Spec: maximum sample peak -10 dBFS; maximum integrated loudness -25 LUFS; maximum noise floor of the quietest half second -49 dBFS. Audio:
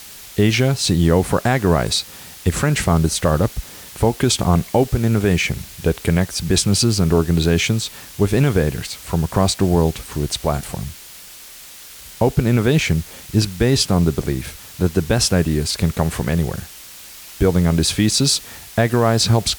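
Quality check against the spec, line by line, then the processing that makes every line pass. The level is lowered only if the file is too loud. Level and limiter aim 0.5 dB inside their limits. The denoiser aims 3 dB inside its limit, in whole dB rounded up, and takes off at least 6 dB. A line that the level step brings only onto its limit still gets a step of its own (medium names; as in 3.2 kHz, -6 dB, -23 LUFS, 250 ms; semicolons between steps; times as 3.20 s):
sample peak -5.0 dBFS: fail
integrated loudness -18.5 LUFS: fail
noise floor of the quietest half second -39 dBFS: fail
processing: noise reduction 6 dB, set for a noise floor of -39 dBFS; trim -7 dB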